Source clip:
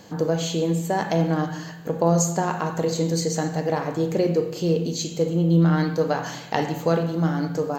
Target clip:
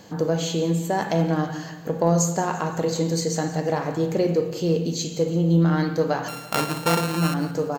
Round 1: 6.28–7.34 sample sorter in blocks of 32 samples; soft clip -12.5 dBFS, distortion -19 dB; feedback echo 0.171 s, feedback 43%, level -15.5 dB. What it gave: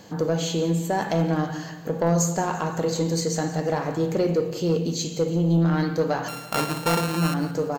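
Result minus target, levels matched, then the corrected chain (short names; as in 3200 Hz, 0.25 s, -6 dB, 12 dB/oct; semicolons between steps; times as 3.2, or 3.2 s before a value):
soft clip: distortion +15 dB
6.28–7.34 sample sorter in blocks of 32 samples; soft clip -3.5 dBFS, distortion -34 dB; feedback echo 0.171 s, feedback 43%, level -15.5 dB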